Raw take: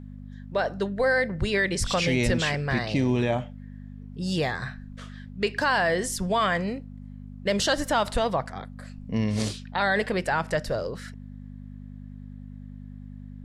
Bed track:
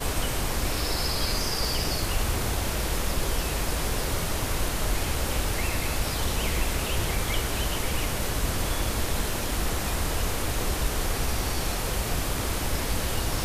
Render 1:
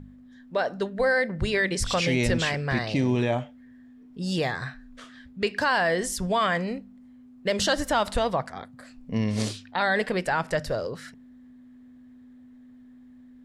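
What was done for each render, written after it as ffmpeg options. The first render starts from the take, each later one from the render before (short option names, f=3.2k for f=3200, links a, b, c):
-af "bandreject=f=50:t=h:w=4,bandreject=f=100:t=h:w=4,bandreject=f=150:t=h:w=4,bandreject=f=200:t=h:w=4"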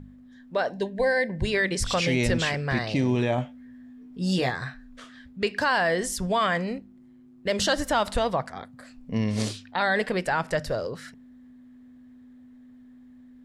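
-filter_complex "[0:a]asettb=1/sr,asplit=3[a][b][c];[a]atrim=end=0.704[d];[b]atrim=start=0.7:end=1.45,asetpts=PTS-STARTPTS,afade=t=in:d=0.004:c=qsin,afade=t=out:st=0.746:d=0.004:c=qsin,asuperstop=centerf=1300:order=8:qfactor=2.7[e];[c]atrim=start=1.446[f];[d][e]acrossfade=d=0.004:c1=hsin:c2=qsin[g];[g][f]acrossfade=d=0.004:c1=qsin:c2=hsin,asettb=1/sr,asplit=3[h][i][j];[h]atrim=end=3.364[k];[i]atrim=start=3.36:end=4.5,asetpts=PTS-STARTPTS,afade=t=in:d=0.004:c=qsin,afade=t=out:st=1.136:d=0.004:c=qsin,asplit=2[l][m];[m]adelay=16,volume=-4.5dB[n];[l][n]amix=inputs=2:normalize=0,atrim=end_sample=50274[o];[j]atrim=start=4.496[p];[k][o]acrossfade=d=0.004:c1=hsin:c2=qsin[q];[q][p]acrossfade=d=0.004:c1=qsin:c2=hsin,asplit=3[r][s][t];[r]afade=t=out:st=6.77:d=0.02[u];[s]tremolo=f=110:d=0.462,afade=t=in:st=6.77:d=0.02,afade=t=out:st=7.48:d=0.02[v];[t]afade=t=in:st=7.48:d=0.02[w];[u][v][w]amix=inputs=3:normalize=0"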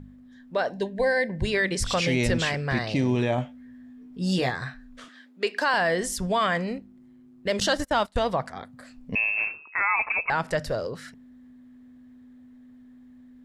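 -filter_complex "[0:a]asettb=1/sr,asplit=3[a][b][c];[a]atrim=end=5.084[d];[b]atrim=start=5.08:end=5.74,asetpts=PTS-STARTPTS,afade=t=in:d=0.004:c=qsin,afade=t=out:st=0.656:d=0.004:c=qsin,highpass=f=280:w=0.5412,highpass=f=280:w=1.3066[e];[c]atrim=start=5.736[f];[d][e]acrossfade=d=0.004:c1=hsin:c2=qsin[g];[g][f]acrossfade=d=0.004:c1=qsin:c2=hsin,asettb=1/sr,asplit=3[h][i][j];[h]atrim=end=7.604[k];[i]atrim=start=7.6:end=8.22,asetpts=PTS-STARTPTS,afade=t=in:d=0.004:c=qsin,afade=t=out:st=0.616:d=0.004:c=qsin,agate=range=-25dB:threshold=-30dB:ratio=16:release=100:detection=peak[l];[j]atrim=start=8.216[m];[k][l]acrossfade=d=0.004:c1=hsin:c2=qsin[n];[n][m]acrossfade=d=0.004:c1=qsin:c2=hsin,asettb=1/sr,asplit=3[o][p][q];[o]atrim=end=9.154[r];[p]atrim=start=9.15:end=10.3,asetpts=PTS-STARTPTS,afade=t=in:d=0.004:c=qsin,afade=t=out:st=1.146:d=0.004:c=qsin,lowpass=f=2.4k:t=q:w=0.5098,lowpass=f=2.4k:t=q:w=0.6013,lowpass=f=2.4k:t=q:w=0.9,lowpass=f=2.4k:t=q:w=2.563,afreqshift=-2800[s];[q]atrim=start=10.296[t];[r][s]acrossfade=d=0.004:c1=hsin:c2=qsin[u];[u][t]acrossfade=d=0.004:c1=qsin:c2=hsin"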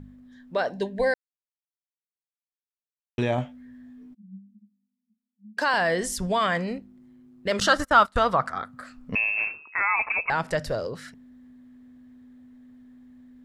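-filter_complex "[0:a]asplit=3[a][b][c];[a]afade=t=out:st=4.13:d=0.02[d];[b]asuperpass=centerf=210:order=8:qfactor=7.7,afade=t=in:st=4.13:d=0.02,afade=t=out:st=5.57:d=0.02[e];[c]afade=t=in:st=5.57:d=0.02[f];[d][e][f]amix=inputs=3:normalize=0,asettb=1/sr,asplit=3[g][h][i];[g]atrim=end=7.514[j];[h]atrim=start=7.51:end=9.17,asetpts=PTS-STARTPTS,afade=t=in:d=0.004:c=qsin,afade=t=out:st=1.656:d=0.004:c=qsin,equalizer=f=1.3k:w=2.8:g=14.5[k];[i]atrim=start=9.166[l];[j][k]acrossfade=d=0.004:c1=hsin:c2=qsin[m];[m][l]acrossfade=d=0.004:c1=qsin:c2=hsin,asplit=3[n][o][p];[n]atrim=end=1.14,asetpts=PTS-STARTPTS,afade=t=out:st=1.136:d=0.004:c=hsin[q];[o]atrim=start=1.14:end=3.18,asetpts=PTS-STARTPTS,volume=0[r];[p]atrim=start=3.18,asetpts=PTS-STARTPTS,afade=t=in:d=0.004:c=hsin[s];[q][r][s]concat=n=3:v=0:a=1"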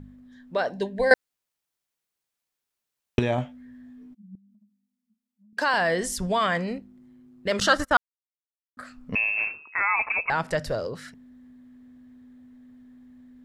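-filter_complex "[0:a]asettb=1/sr,asplit=3[a][b][c];[a]atrim=end=4.354[d];[b]atrim=start=4.35:end=5.53,asetpts=PTS-STARTPTS,afade=t=in:d=0.004:c=qsin,afade=t=out:st=1.176:d=0.004:c=qsin,acompressor=threshold=-56dB:ratio=6:attack=3.2:release=140:knee=1:detection=peak[e];[c]atrim=start=5.526[f];[d][e]acrossfade=d=0.004:c1=hsin:c2=qsin[g];[g][f]acrossfade=d=0.004:c1=qsin:c2=hsin,asplit=5[h][i][j][k][l];[h]atrim=end=1.112[m];[i]atrim=start=1.108:end=3.192,asetpts=PTS-STARTPTS,volume=11.5dB[n];[j]atrim=start=3.188:end=7.97,asetpts=PTS-STARTPTS,afade=t=out:st=4.778:d=0.004:c=hsin[o];[k]atrim=start=7.97:end=8.77,asetpts=PTS-STARTPTS,volume=0[p];[l]atrim=start=8.77,asetpts=PTS-STARTPTS,afade=t=in:d=0.004:c=hsin[q];[m][n]acrossfade=d=0.004:c1=hsin:c2=hsin[r];[o][p][q]concat=n=3:v=0:a=1[s];[r][s]acrossfade=d=0.004:c1=hsin:c2=hsin"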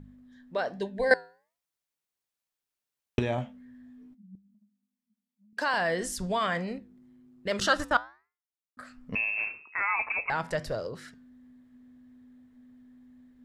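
-af "flanger=delay=6:depth=2.9:regen=-88:speed=1.2:shape=sinusoidal"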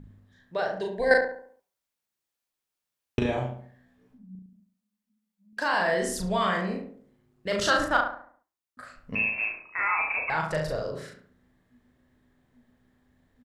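-filter_complex "[0:a]asplit=2[a][b];[b]adelay=38,volume=-3dB[c];[a][c]amix=inputs=2:normalize=0,asplit=2[d][e];[e]adelay=70,lowpass=f=1.5k:p=1,volume=-5dB,asplit=2[f][g];[g]adelay=70,lowpass=f=1.5k:p=1,volume=0.46,asplit=2[h][i];[i]adelay=70,lowpass=f=1.5k:p=1,volume=0.46,asplit=2[j][k];[k]adelay=70,lowpass=f=1.5k:p=1,volume=0.46,asplit=2[l][m];[m]adelay=70,lowpass=f=1.5k:p=1,volume=0.46,asplit=2[n][o];[o]adelay=70,lowpass=f=1.5k:p=1,volume=0.46[p];[d][f][h][j][l][n][p]amix=inputs=7:normalize=0"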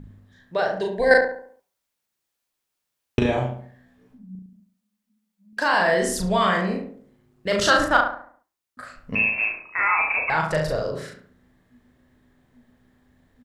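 -af "volume=5.5dB,alimiter=limit=-2dB:level=0:latency=1"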